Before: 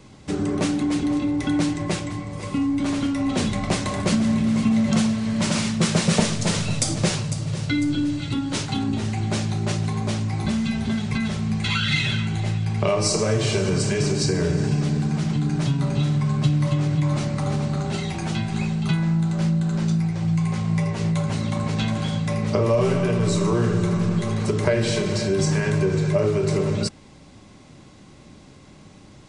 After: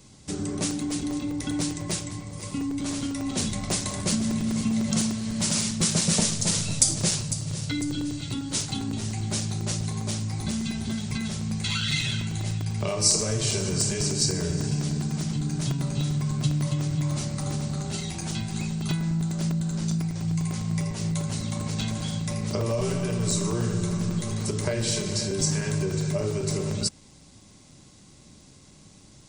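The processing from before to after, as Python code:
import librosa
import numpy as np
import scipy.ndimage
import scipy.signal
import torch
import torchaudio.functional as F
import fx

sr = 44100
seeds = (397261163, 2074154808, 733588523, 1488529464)

y = fx.bass_treble(x, sr, bass_db=4, treble_db=15)
y = fx.buffer_crackle(y, sr, first_s=0.71, period_s=0.1, block=128, kind='zero')
y = y * librosa.db_to_amplitude(-8.5)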